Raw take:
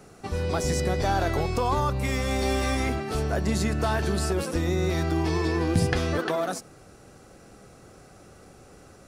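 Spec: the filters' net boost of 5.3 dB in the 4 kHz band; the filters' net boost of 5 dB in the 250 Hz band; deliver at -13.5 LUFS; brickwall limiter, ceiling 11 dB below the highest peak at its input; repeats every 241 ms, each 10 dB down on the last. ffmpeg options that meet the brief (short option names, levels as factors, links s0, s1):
-af "equalizer=f=250:t=o:g=7,equalizer=f=4000:t=o:g=6.5,alimiter=limit=0.141:level=0:latency=1,aecho=1:1:241|482|723|964:0.316|0.101|0.0324|0.0104,volume=4.22"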